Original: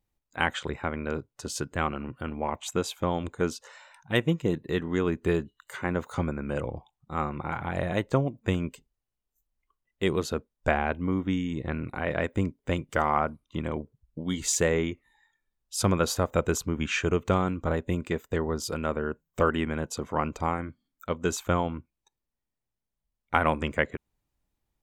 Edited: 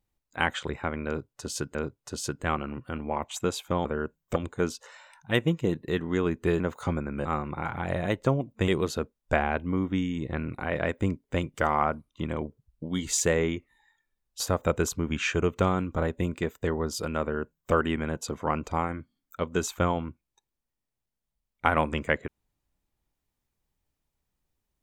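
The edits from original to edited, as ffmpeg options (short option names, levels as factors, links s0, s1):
-filter_complex "[0:a]asplit=8[s0][s1][s2][s3][s4][s5][s6][s7];[s0]atrim=end=1.752[s8];[s1]atrim=start=1.068:end=3.172[s9];[s2]atrim=start=18.908:end=19.422[s10];[s3]atrim=start=3.168:end=5.412[s11];[s4]atrim=start=5.908:end=6.562[s12];[s5]atrim=start=7.118:end=8.552[s13];[s6]atrim=start=10.028:end=15.752[s14];[s7]atrim=start=16.088[s15];[s8][s9]acrossfade=d=0.004:c1=hsin:c2=hsin[s16];[s16][s10]acrossfade=d=0.004:c1=hsin:c2=hsin[s17];[s17][s11]acrossfade=d=0.004:c1=hsin:c2=hsin[s18];[s18][s12]acrossfade=d=0.004:c1=hsin:c2=hsin[s19];[s19][s13]acrossfade=d=0.004:c1=hsin:c2=hsin[s20];[s20][s14]acrossfade=d=0.004:c1=hsin:c2=hsin[s21];[s21][s15]acrossfade=d=0.004:c1=hsin:c2=hsin"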